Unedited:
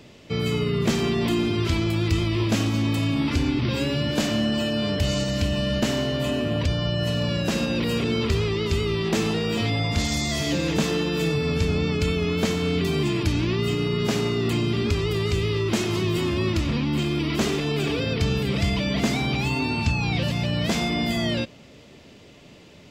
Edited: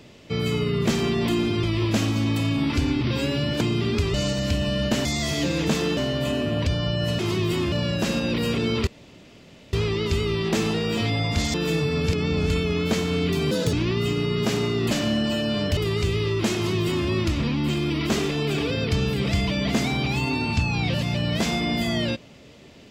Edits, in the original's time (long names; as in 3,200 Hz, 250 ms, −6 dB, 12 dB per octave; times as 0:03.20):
0:01.63–0:02.21: remove
0:04.19–0:05.05: swap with 0:14.53–0:15.06
0:08.33: splice in room tone 0.86 s
0:10.14–0:11.06: move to 0:05.96
0:11.65–0:12.02: reverse
0:13.03–0:13.35: play speed 146%
0:15.84–0:16.37: duplicate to 0:07.18